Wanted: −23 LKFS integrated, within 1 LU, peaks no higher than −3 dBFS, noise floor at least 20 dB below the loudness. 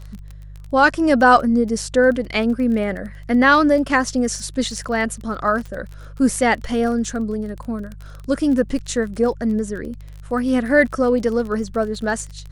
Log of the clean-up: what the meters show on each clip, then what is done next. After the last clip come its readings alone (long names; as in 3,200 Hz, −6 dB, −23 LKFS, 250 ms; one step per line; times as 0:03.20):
crackle rate 23 per second; mains hum 50 Hz; hum harmonics up to 150 Hz; level of the hum −34 dBFS; integrated loudness −19.0 LKFS; sample peak −1.5 dBFS; target loudness −23.0 LKFS
→ click removal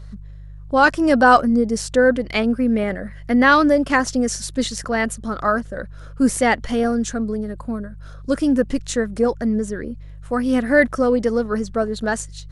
crackle rate 0 per second; mains hum 50 Hz; hum harmonics up to 150 Hz; level of the hum −34 dBFS
→ hum removal 50 Hz, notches 3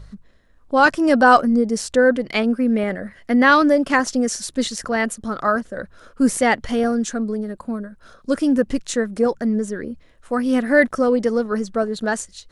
mains hum none found; integrated loudness −19.0 LKFS; sample peak −1.5 dBFS; target loudness −23.0 LKFS
→ level −4 dB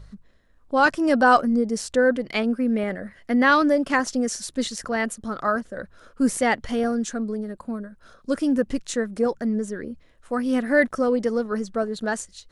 integrated loudness −23.0 LKFS; sample peak −5.5 dBFS; background noise floor −56 dBFS